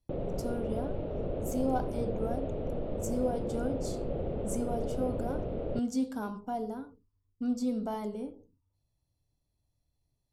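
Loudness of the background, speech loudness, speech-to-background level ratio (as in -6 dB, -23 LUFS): -36.5 LUFS, -36.0 LUFS, 0.5 dB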